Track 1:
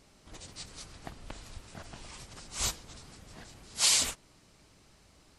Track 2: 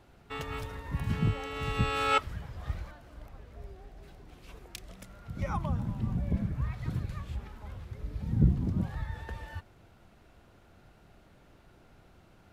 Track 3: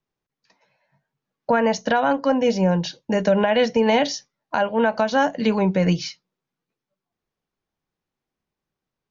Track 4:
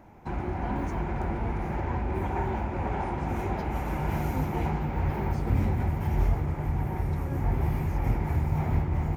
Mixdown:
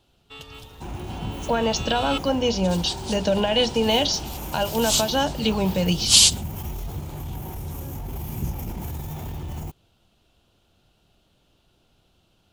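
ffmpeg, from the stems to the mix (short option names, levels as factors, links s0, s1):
-filter_complex "[0:a]adelay=2300,volume=1.33[s0];[1:a]volume=0.501[s1];[2:a]volume=0.668,asplit=2[s2][s3];[3:a]alimiter=level_in=1.12:limit=0.0631:level=0:latency=1:release=10,volume=0.891,aexciter=amount=3.7:drive=5:freq=5800,adelay=550,volume=0.841[s4];[s3]apad=whole_len=338717[s5];[s0][s5]sidechaingate=range=0.126:threshold=0.00126:ratio=16:detection=peak[s6];[s6][s1][s2][s4]amix=inputs=4:normalize=0,highshelf=f=2500:t=q:w=3:g=6.5"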